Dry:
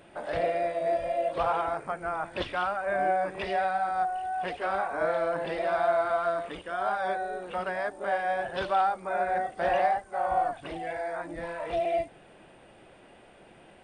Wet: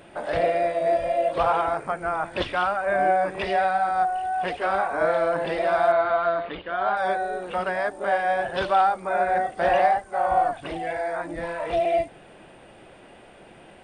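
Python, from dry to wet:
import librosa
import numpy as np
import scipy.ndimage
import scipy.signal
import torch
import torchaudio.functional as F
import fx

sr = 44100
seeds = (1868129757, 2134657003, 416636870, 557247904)

y = fx.ellip_lowpass(x, sr, hz=4400.0, order=4, stop_db=40, at=(5.92, 6.97))
y = y * librosa.db_to_amplitude(5.5)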